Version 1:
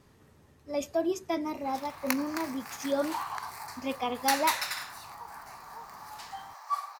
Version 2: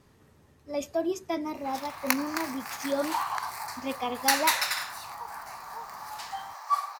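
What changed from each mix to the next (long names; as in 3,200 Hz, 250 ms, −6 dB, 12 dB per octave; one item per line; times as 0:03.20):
background +5.0 dB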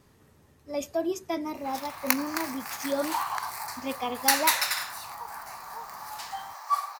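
master: add high-shelf EQ 9,100 Hz +6 dB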